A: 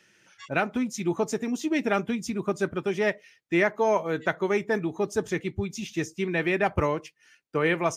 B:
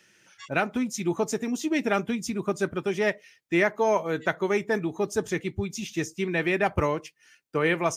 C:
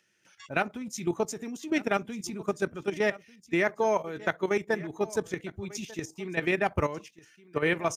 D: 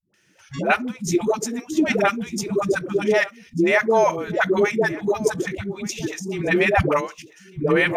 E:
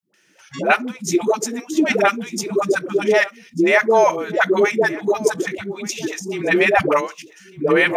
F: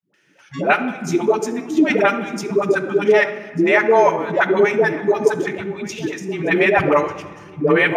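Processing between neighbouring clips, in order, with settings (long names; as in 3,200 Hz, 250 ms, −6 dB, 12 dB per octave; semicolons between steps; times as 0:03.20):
high-shelf EQ 5,800 Hz +5 dB
output level in coarse steps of 12 dB; single-tap delay 1,194 ms −19.5 dB
all-pass dispersion highs, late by 141 ms, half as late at 370 Hz; level +9 dB
high-pass filter 240 Hz 12 dB per octave; level +3.5 dB
bass and treble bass +4 dB, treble −9 dB; on a send at −7.5 dB: convolution reverb RT60 1.5 s, pre-delay 7 ms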